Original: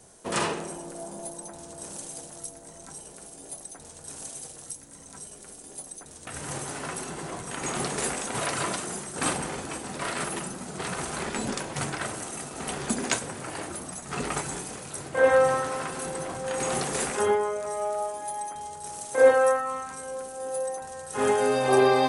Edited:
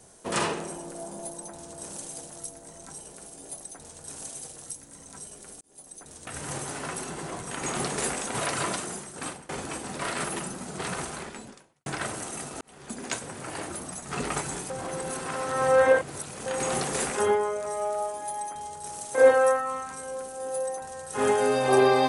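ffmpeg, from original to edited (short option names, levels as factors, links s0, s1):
-filter_complex "[0:a]asplit=7[s0][s1][s2][s3][s4][s5][s6];[s0]atrim=end=5.61,asetpts=PTS-STARTPTS,afade=t=out:st=5.606:d=0.004:c=hsin[s7];[s1]atrim=start=5.61:end=9.49,asetpts=PTS-STARTPTS,afade=t=in:d=0.5,afade=t=out:st=3.18:d=0.7:silence=0.0707946[s8];[s2]atrim=start=9.49:end=11.86,asetpts=PTS-STARTPTS,afade=t=in:d=0.004:c=hsin:silence=0.0707946,afade=t=out:st=1.47:d=0.9:c=qua[s9];[s3]atrim=start=11.86:end=12.61,asetpts=PTS-STARTPTS,afade=t=in:d=0.004:c=hsin,afade=t=out:st=0.746:d=0.004:c=hsin[s10];[s4]atrim=start=12.61:end=14.702,asetpts=PTS-STARTPTS,afade=t=in:d=0.96[s11];[s5]atrim=start=14.698:end=16.462,asetpts=PTS-STARTPTS,areverse[s12];[s6]atrim=start=16.458[s13];[s7][s8][s9][s10][s11]concat=n=5:v=0:a=1[s14];[s14][s12]acrossfade=d=0.004:c1=hsin:c2=hsin[s15];[s15][s13]acrossfade=d=0.004:c1=hsin:c2=hsin"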